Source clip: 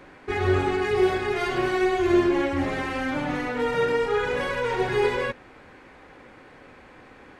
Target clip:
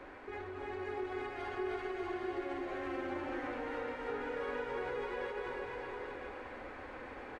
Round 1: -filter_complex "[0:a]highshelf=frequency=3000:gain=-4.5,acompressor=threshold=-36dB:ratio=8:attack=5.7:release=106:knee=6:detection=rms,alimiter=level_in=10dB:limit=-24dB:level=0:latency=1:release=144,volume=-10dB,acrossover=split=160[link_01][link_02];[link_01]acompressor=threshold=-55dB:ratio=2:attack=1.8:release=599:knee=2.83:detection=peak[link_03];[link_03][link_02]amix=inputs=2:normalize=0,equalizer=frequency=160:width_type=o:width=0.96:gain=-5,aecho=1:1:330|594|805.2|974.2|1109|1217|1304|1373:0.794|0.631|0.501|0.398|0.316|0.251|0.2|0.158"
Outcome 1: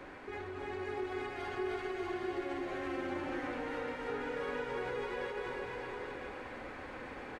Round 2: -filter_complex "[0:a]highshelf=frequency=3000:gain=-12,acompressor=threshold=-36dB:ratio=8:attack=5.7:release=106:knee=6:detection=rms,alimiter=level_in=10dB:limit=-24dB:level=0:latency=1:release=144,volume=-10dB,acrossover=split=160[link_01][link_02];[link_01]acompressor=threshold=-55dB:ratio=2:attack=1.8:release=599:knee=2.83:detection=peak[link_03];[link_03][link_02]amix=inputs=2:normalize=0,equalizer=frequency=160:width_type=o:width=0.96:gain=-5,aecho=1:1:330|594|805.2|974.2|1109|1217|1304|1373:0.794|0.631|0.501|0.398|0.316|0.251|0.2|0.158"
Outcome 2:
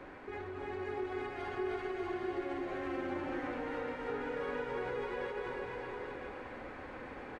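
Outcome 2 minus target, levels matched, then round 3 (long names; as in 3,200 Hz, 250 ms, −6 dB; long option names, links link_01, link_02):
125 Hz band +2.5 dB
-filter_complex "[0:a]highshelf=frequency=3000:gain=-12,acompressor=threshold=-36dB:ratio=8:attack=5.7:release=106:knee=6:detection=rms,alimiter=level_in=10dB:limit=-24dB:level=0:latency=1:release=144,volume=-10dB,acrossover=split=160[link_01][link_02];[link_01]acompressor=threshold=-55dB:ratio=2:attack=1.8:release=599:knee=2.83:detection=peak[link_03];[link_03][link_02]amix=inputs=2:normalize=0,equalizer=frequency=160:width_type=o:width=0.96:gain=-13.5,aecho=1:1:330|594|805.2|974.2|1109|1217|1304|1373:0.794|0.631|0.501|0.398|0.316|0.251|0.2|0.158"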